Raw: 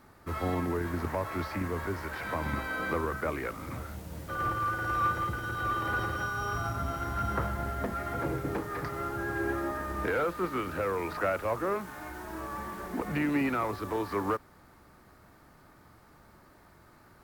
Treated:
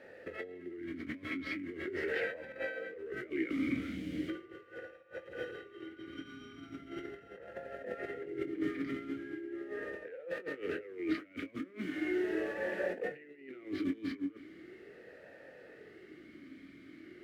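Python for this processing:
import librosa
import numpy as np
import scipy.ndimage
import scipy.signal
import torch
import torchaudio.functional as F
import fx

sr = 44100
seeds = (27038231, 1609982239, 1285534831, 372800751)

y = fx.over_compress(x, sr, threshold_db=-38.0, ratio=-0.5)
y = fx.doubler(y, sr, ms=22.0, db=-10.0)
y = fx.vowel_sweep(y, sr, vowels='e-i', hz=0.39)
y = y * 10.0 ** (11.5 / 20.0)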